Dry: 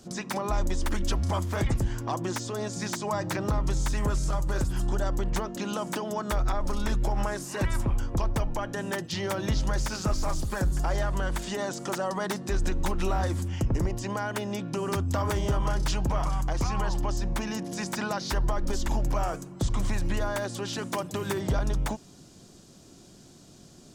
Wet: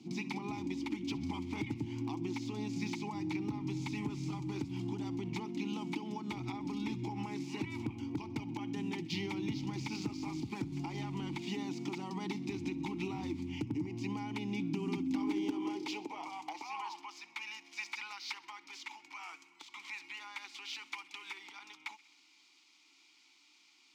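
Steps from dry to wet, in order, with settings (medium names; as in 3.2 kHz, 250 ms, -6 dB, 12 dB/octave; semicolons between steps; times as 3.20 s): median filter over 5 samples; vowel filter u; feedback echo behind a high-pass 64 ms, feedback 58%, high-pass 1.7 kHz, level -18.5 dB; compression 3:1, threshold -45 dBFS, peak gain reduction 9 dB; high-pass sweep 120 Hz -> 1.4 kHz, 14.48–17.25 s; overload inside the chain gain 35 dB; FFT filter 140 Hz 0 dB, 930 Hz -9 dB, 4.6 kHz +11 dB; trim +11.5 dB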